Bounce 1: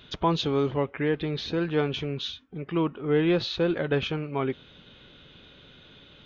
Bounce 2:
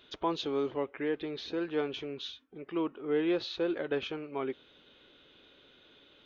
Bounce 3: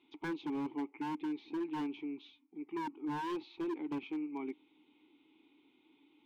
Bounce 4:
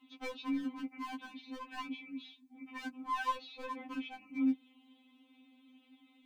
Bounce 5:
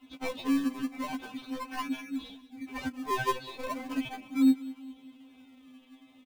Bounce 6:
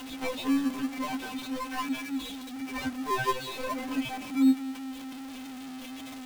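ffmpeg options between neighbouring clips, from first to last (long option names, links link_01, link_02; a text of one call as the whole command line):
ffmpeg -i in.wav -af "lowshelf=frequency=230:width_type=q:width=1.5:gain=-9,volume=-7.5dB" out.wav
ffmpeg -i in.wav -filter_complex "[0:a]asplit=3[link_01][link_02][link_03];[link_01]bandpass=frequency=300:width_type=q:width=8,volume=0dB[link_04];[link_02]bandpass=frequency=870:width_type=q:width=8,volume=-6dB[link_05];[link_03]bandpass=frequency=2240:width_type=q:width=8,volume=-9dB[link_06];[link_04][link_05][link_06]amix=inputs=3:normalize=0,aeval=exprs='0.0133*(abs(mod(val(0)/0.0133+3,4)-2)-1)':channel_layout=same,volume=5.5dB" out.wav
ffmpeg -i in.wav -af "afftfilt=real='re*3.46*eq(mod(b,12),0)':imag='im*3.46*eq(mod(b,12),0)':win_size=2048:overlap=0.75,volume=7dB" out.wav
ffmpeg -i in.wav -filter_complex "[0:a]asplit=2[link_01][link_02];[link_02]acrusher=samples=21:mix=1:aa=0.000001:lfo=1:lforange=21:lforate=0.38,volume=-4.5dB[link_03];[link_01][link_03]amix=inputs=2:normalize=0,aecho=1:1:199|398|597|796:0.126|0.0567|0.0255|0.0115,volume=4.5dB" out.wav
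ffmpeg -i in.wav -af "aeval=exprs='val(0)+0.5*0.015*sgn(val(0))':channel_layout=same" out.wav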